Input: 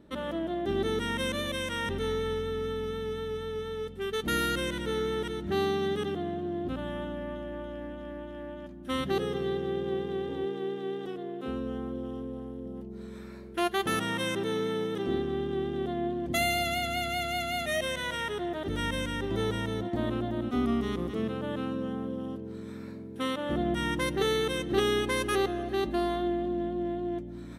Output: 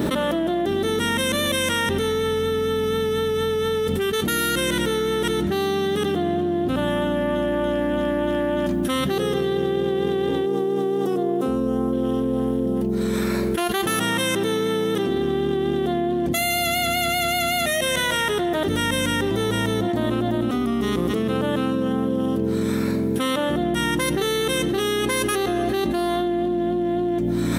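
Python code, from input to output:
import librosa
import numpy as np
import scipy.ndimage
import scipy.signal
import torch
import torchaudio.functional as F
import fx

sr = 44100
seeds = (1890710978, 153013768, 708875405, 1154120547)

y = fx.band_shelf(x, sr, hz=2500.0, db=-9.0, octaves=1.7, at=(10.46, 11.93))
y = scipy.signal.sosfilt(scipy.signal.butter(2, 86.0, 'highpass', fs=sr, output='sos'), y)
y = fx.high_shelf(y, sr, hz=7600.0, db=11.5)
y = fx.env_flatten(y, sr, amount_pct=100)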